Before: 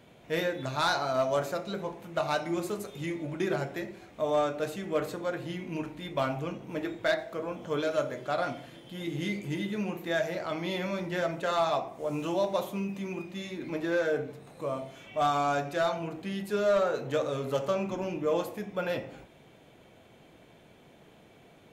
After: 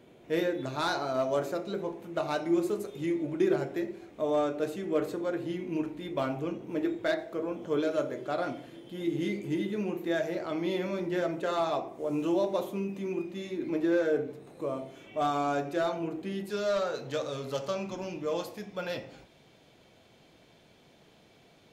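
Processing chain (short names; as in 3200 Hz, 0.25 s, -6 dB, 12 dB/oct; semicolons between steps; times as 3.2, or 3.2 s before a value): bell 350 Hz +10 dB 0.93 oct, from 16.5 s 4800 Hz; gain -4 dB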